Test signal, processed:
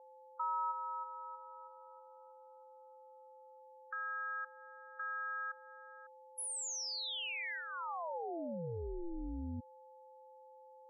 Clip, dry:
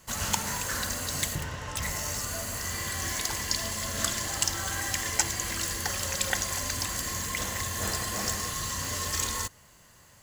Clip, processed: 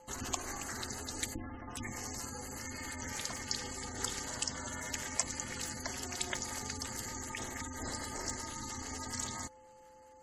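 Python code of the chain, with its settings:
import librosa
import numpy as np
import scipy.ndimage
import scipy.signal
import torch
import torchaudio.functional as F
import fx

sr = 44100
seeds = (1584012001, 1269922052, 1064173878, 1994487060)

y = fx.dynamic_eq(x, sr, hz=1500.0, q=4.1, threshold_db=-40.0, ratio=4.0, max_db=-5)
y = fx.spec_gate(y, sr, threshold_db=-15, keep='strong')
y = y + 10.0 ** (-48.0 / 20.0) * np.sin(2.0 * np.pi * 690.0 * np.arange(len(y)) / sr)
y = y * np.sin(2.0 * np.pi * 170.0 * np.arange(len(y)) / sr)
y = y * 10.0 ** (-4.5 / 20.0)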